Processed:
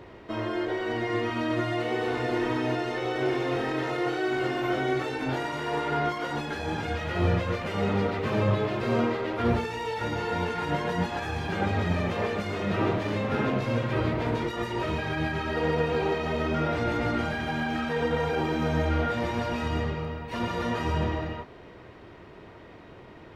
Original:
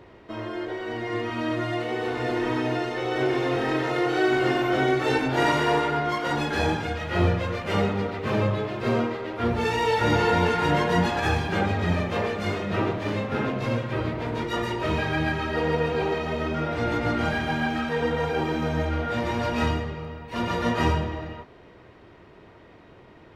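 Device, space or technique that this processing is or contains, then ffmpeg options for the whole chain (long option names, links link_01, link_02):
de-esser from a sidechain: -filter_complex "[0:a]asplit=2[link_01][link_02];[link_02]highpass=6400,apad=whole_len=1029775[link_03];[link_01][link_03]sidechaincompress=threshold=-52dB:ratio=12:attack=2:release=88,volume=2.5dB"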